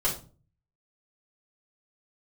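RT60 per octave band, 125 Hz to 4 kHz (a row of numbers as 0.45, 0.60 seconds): 0.75, 0.55, 0.40, 0.35, 0.25, 0.25 seconds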